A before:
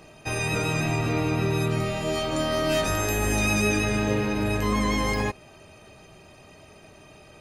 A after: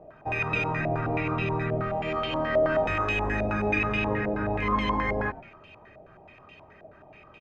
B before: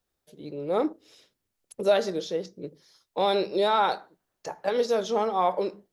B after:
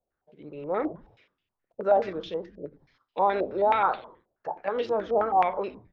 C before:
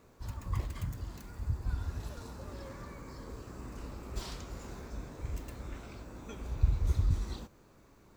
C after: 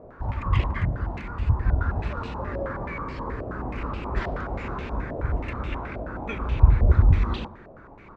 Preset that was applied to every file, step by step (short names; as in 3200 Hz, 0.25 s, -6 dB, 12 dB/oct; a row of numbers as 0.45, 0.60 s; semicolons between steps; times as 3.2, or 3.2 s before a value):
frequency-shifting echo 94 ms, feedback 39%, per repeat -140 Hz, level -16.5 dB; stepped low-pass 9.4 Hz 650–2800 Hz; match loudness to -27 LUFS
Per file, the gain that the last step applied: -5.0, -4.5, +11.5 dB